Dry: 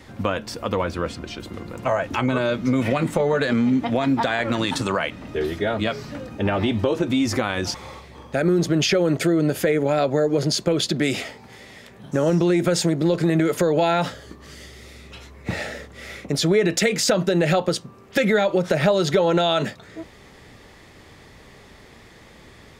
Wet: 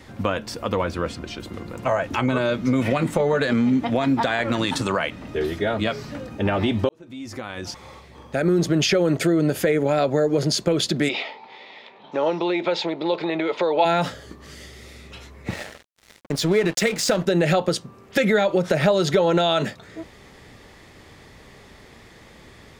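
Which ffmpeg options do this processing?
ffmpeg -i in.wav -filter_complex "[0:a]asplit=3[link_01][link_02][link_03];[link_01]afade=type=out:start_time=11.08:duration=0.02[link_04];[link_02]highpass=410,equalizer=frequency=900:width_type=q:width=4:gain=10,equalizer=frequency=1600:width_type=q:width=4:gain=-7,equalizer=frequency=2400:width_type=q:width=4:gain=5,equalizer=frequency=3800:width_type=q:width=4:gain=6,lowpass=frequency=4100:width=0.5412,lowpass=frequency=4100:width=1.3066,afade=type=in:start_time=11.08:duration=0.02,afade=type=out:start_time=13.84:duration=0.02[link_05];[link_03]afade=type=in:start_time=13.84:duration=0.02[link_06];[link_04][link_05][link_06]amix=inputs=3:normalize=0,asettb=1/sr,asplit=3[link_07][link_08][link_09];[link_07]atrim=end=15.494[link_10];[link_08]atrim=start=15.49:end=17.26,asetpts=PTS-STARTPTS,afade=type=in:duration=0.004:curve=qsin,afade=type=out:start_time=1.766:duration=0.004:curve=qsin,aeval=exprs='sgn(val(0))*max(abs(val(0))-0.0237,0)':channel_layout=same[link_11];[link_09]atrim=start=17.256[link_12];[link_10][link_11]acrossfade=duration=0.004:curve1=hsin:curve2=qsin[link_13];[link_13][link_12]acrossfade=duration=0.004:curve1=qsin:curve2=hsin,asplit=2[link_14][link_15];[link_14]atrim=end=6.89,asetpts=PTS-STARTPTS,afade=type=out:start_time=6.886:duration=0.004:curve=hsin[link_16];[link_15]atrim=start=6.89,asetpts=PTS-STARTPTS,afade=type=in:duration=1.69[link_17];[link_16][link_17]concat=n=2:v=0:a=1" out.wav

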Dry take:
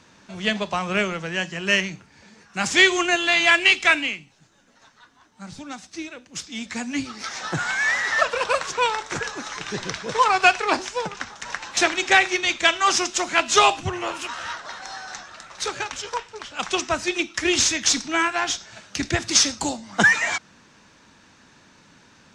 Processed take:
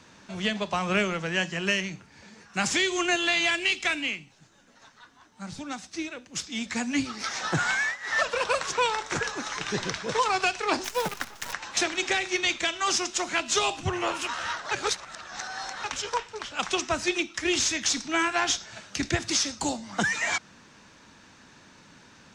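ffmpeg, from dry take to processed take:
ffmpeg -i in.wav -filter_complex "[0:a]asettb=1/sr,asplit=3[link_01][link_02][link_03];[link_01]atrim=end=10.844[link_04];[link_02]atrim=start=10.84:end=11.53,asetpts=PTS-STARTPTS,afade=type=in:duration=0.004:curve=qsin,afade=type=out:start_time=0.686:duration=0.004:curve=qsin,acrusher=bits=6:dc=4:mix=0:aa=0.000001[link_05];[link_03]atrim=start=11.526[link_06];[link_04][link_05]acrossfade=duration=0.004:curve1=hsin:curve2=qsin[link_07];[link_07][link_06]acrossfade=duration=0.004:curve1=qsin:curve2=hsin,asplit=5[link_08][link_09][link_10][link_11][link_12];[link_08]atrim=end=7.97,asetpts=PTS-STARTPTS,afade=type=out:start_time=7.73:duration=0.24:silence=0.105925[link_13];[link_09]atrim=start=7.97:end=8,asetpts=PTS-STARTPTS,volume=-19.5dB[link_14];[link_10]atrim=start=8:end=14.712,asetpts=PTS-STARTPTS,afade=type=in:duration=0.24:silence=0.105925[link_15];[link_11]atrim=start=14.708:end=15.842,asetpts=PTS-STARTPTS,areverse[link_16];[link_12]atrim=start=15.838[link_17];[link_13][link_14][link_15]concat=n=3:v=0:a=1[link_18];[link_18][link_16]acrossfade=duration=0.004:curve1=hsin:curve2=hsin[link_19];[link_19][link_17]acrossfade=duration=0.004:curve1=hsin:curve2=hsin,acrossover=split=450|3000[link_20][link_21][link_22];[link_21]acompressor=threshold=-22dB:ratio=6[link_23];[link_20][link_23][link_22]amix=inputs=3:normalize=0,alimiter=limit=-13.5dB:level=0:latency=1:release=447" out.wav

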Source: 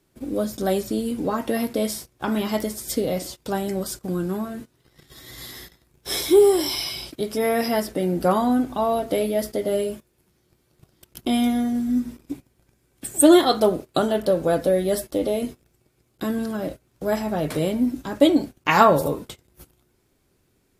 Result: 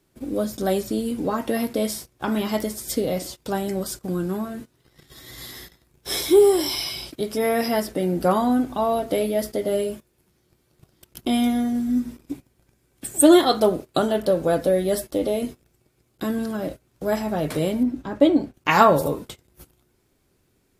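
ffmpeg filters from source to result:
ffmpeg -i in.wav -filter_complex "[0:a]asettb=1/sr,asplit=3[link_01][link_02][link_03];[link_01]atrim=end=17.834[link_04];[link_02]atrim=start=17.83:end=18.54,asetpts=PTS-STARTPTS,afade=type=in:duration=0.004:curve=qsin,afade=type=out:start_time=0.706:duration=0.004:curve=qsin,lowpass=frequency=1900:poles=1[link_05];[link_03]atrim=start=18.536[link_06];[link_04][link_05]acrossfade=duration=0.004:curve1=hsin:curve2=qsin[link_07];[link_07][link_06]acrossfade=duration=0.004:curve1=qsin:curve2=hsin" out.wav

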